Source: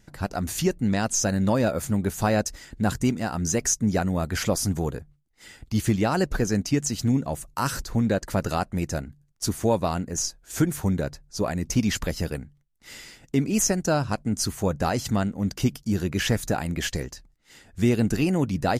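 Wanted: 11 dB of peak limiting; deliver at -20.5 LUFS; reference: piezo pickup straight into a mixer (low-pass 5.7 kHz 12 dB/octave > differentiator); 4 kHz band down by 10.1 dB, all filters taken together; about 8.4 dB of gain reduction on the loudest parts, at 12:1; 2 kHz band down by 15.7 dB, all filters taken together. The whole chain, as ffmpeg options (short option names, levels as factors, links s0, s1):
-af "equalizer=f=2000:t=o:g=-4,equalizer=f=4000:t=o:g=-5,acompressor=threshold=0.0562:ratio=12,alimiter=level_in=1.19:limit=0.0631:level=0:latency=1,volume=0.841,lowpass=5700,aderivative,volume=23.7"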